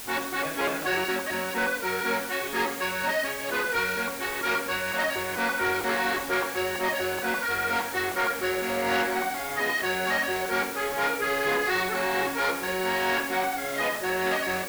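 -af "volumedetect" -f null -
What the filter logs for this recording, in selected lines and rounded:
mean_volume: -27.6 dB
max_volume: -19.4 dB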